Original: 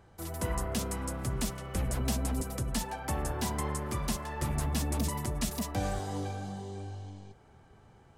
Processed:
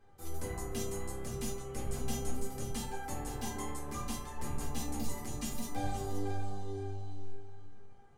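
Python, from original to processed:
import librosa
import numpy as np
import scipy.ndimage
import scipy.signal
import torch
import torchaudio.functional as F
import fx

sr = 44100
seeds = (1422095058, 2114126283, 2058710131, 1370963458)

p1 = fx.comb_fb(x, sr, f0_hz=400.0, decay_s=0.35, harmonics='all', damping=0.0, mix_pct=90)
p2 = p1 + fx.echo_single(p1, sr, ms=523, db=-10.0, dry=0)
p3 = fx.room_shoebox(p2, sr, seeds[0], volume_m3=170.0, walls='furnished', distance_m=2.1)
y = p3 * 10.0 ** (5.0 / 20.0)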